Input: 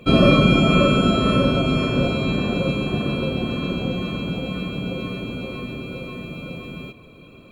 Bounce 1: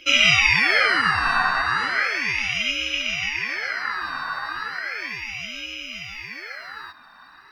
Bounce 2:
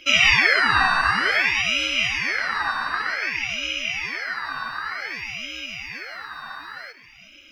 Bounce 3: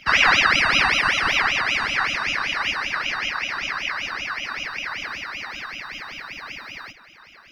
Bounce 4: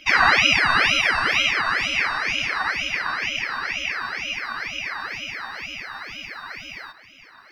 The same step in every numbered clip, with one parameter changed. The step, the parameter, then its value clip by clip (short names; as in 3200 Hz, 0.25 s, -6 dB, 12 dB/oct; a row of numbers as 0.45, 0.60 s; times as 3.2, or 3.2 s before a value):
ring modulator with a swept carrier, at: 0.35, 0.54, 5.2, 2.1 Hz